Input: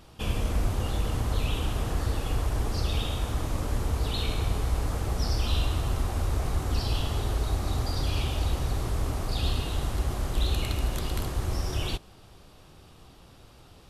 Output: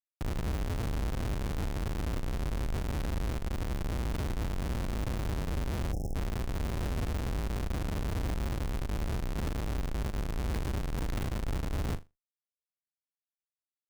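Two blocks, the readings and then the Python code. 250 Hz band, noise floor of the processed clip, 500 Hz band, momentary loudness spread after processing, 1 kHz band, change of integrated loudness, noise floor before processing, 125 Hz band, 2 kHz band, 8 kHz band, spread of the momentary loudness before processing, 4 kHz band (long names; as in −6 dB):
−1.5 dB, below −85 dBFS, −4.0 dB, 2 LU, −5.5 dB, −5.0 dB, −52 dBFS, −5.0 dB, −4.0 dB, −7.5 dB, 2 LU, −11.5 dB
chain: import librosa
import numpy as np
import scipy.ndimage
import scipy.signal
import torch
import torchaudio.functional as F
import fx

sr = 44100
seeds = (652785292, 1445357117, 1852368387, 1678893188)

y = fx.schmitt(x, sr, flips_db=-27.0)
y = fx.room_flutter(y, sr, wall_m=6.9, rt60_s=0.21)
y = fx.spec_erase(y, sr, start_s=5.93, length_s=0.22, low_hz=840.0, high_hz=5100.0)
y = y * 10.0 ** (-4.0 / 20.0)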